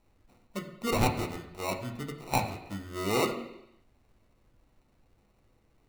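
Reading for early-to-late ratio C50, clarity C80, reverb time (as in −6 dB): 9.0 dB, 11.0 dB, 0.85 s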